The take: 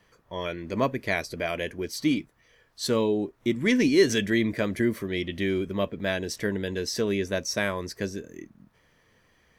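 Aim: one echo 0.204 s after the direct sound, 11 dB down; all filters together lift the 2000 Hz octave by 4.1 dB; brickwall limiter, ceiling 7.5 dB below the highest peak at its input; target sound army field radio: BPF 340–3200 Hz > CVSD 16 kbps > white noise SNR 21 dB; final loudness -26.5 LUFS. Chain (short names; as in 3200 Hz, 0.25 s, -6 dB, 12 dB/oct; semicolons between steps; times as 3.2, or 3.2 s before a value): bell 2000 Hz +5.5 dB; limiter -14.5 dBFS; BPF 340–3200 Hz; echo 0.204 s -11 dB; CVSD 16 kbps; white noise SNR 21 dB; gain +5 dB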